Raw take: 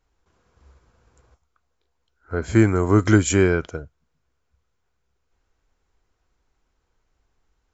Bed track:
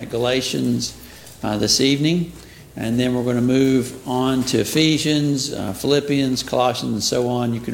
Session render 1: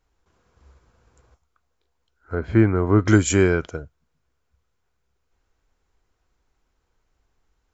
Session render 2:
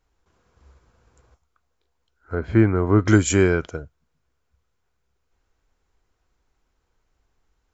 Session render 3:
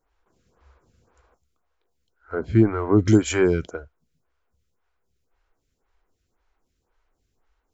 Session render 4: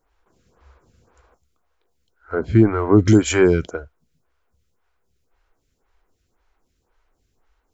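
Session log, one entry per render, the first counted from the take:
0:02.35–0:03.08: high-frequency loss of the air 320 metres
no processing that can be heard
in parallel at −12 dB: asymmetric clip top −19.5 dBFS; on the sum: phaser with staggered stages 1.9 Hz
level +4.5 dB; brickwall limiter −3 dBFS, peak gain reduction 3 dB

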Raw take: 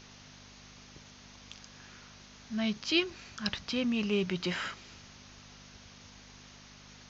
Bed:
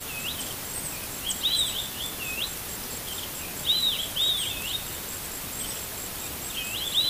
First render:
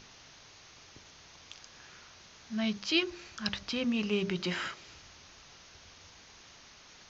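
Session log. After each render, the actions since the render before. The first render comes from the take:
hum removal 50 Hz, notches 12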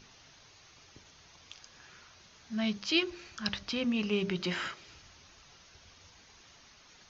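broadband denoise 6 dB, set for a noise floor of −56 dBFS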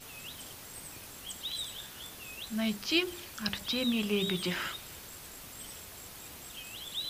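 mix in bed −13 dB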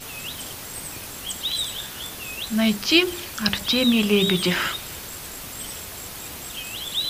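level +11.5 dB
brickwall limiter −3 dBFS, peak gain reduction 1 dB

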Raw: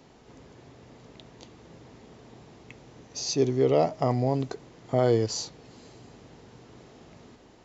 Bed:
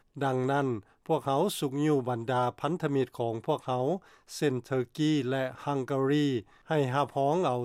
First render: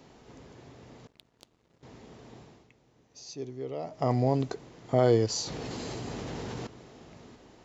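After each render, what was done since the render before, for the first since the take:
0:01.07–0:01.83: power curve on the samples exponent 2
0:02.38–0:04.15: duck −14.5 dB, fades 0.32 s
0:05.43–0:06.67: envelope flattener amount 100%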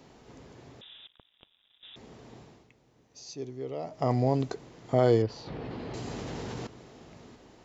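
0:00.81–0:01.96: voice inversion scrambler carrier 3,700 Hz
0:05.22–0:05.94: high-frequency loss of the air 350 metres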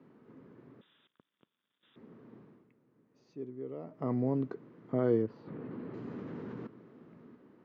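Chebyshev band-pass filter 190–1,200 Hz, order 2
parametric band 760 Hz −14.5 dB 0.93 octaves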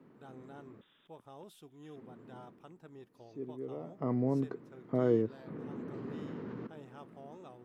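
mix in bed −24.5 dB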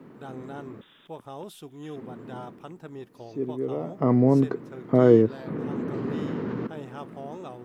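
level +12 dB

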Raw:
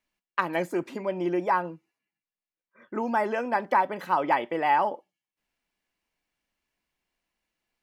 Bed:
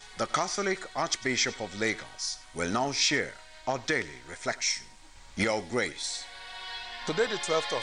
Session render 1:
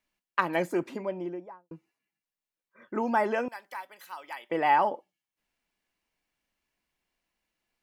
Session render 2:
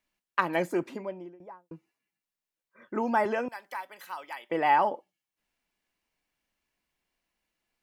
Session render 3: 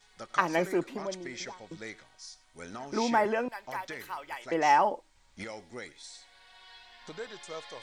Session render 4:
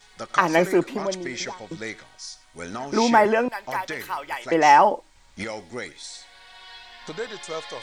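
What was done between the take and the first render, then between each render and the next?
0:00.73–0:01.71: fade out and dull; 0:03.48–0:04.50: first difference
0:00.68–0:01.40: fade out equal-power, to −21.5 dB; 0:03.25–0:04.24: multiband upward and downward compressor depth 40%
mix in bed −13.5 dB
level +9 dB; brickwall limiter −3 dBFS, peak gain reduction 3 dB

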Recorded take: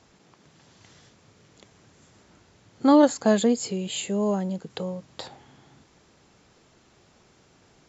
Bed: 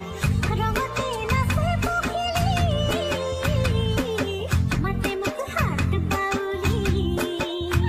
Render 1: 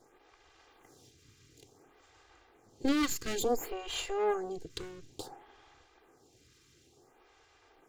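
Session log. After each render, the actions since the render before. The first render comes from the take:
lower of the sound and its delayed copy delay 2.5 ms
phaser with staggered stages 0.57 Hz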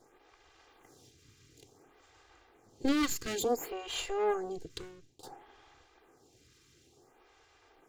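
0:03.27–0:03.97: high-pass filter 79 Hz 6 dB per octave
0:04.64–0:05.23: fade out, to −17.5 dB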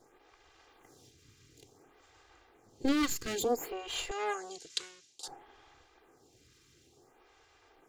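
0:04.11–0:05.28: meter weighting curve ITU-R 468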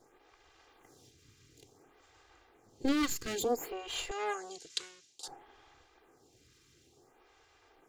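level −1 dB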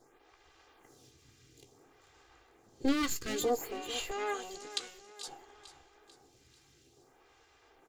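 double-tracking delay 15 ms −11 dB
repeating echo 442 ms, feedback 46%, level −14 dB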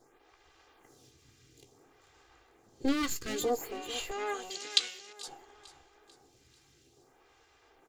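0:04.50–0:05.13: meter weighting curve D

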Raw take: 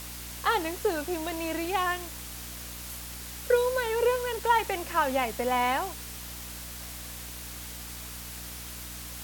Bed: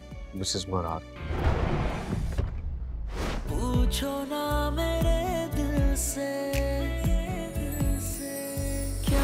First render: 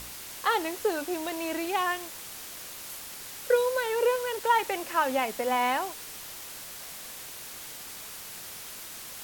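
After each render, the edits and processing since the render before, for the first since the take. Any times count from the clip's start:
hum removal 60 Hz, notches 5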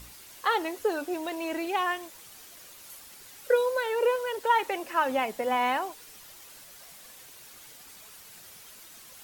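broadband denoise 9 dB, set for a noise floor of −42 dBFS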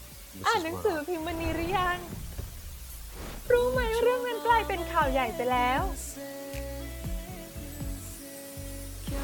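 mix in bed −9.5 dB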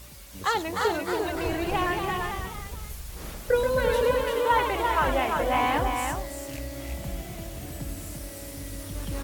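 single-tap delay 343 ms −4.5 dB
delay with pitch and tempo change per echo 327 ms, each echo +1 semitone, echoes 3, each echo −6 dB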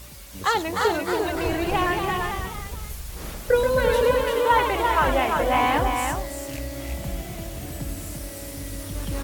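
level +3.5 dB

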